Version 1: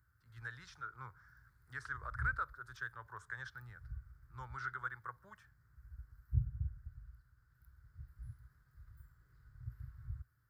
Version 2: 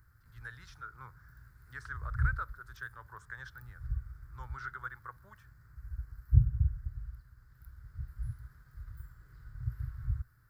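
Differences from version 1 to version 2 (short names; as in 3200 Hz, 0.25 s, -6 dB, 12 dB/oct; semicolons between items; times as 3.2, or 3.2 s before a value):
background +10.0 dB; master: remove HPF 45 Hz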